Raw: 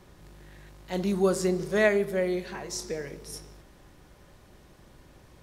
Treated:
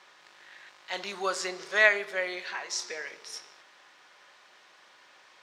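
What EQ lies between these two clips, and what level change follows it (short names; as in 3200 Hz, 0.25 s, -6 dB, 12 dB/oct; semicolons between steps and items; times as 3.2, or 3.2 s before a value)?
HPF 1200 Hz 12 dB/oct; air absorption 160 m; high shelf 6700 Hz +9 dB; +8.5 dB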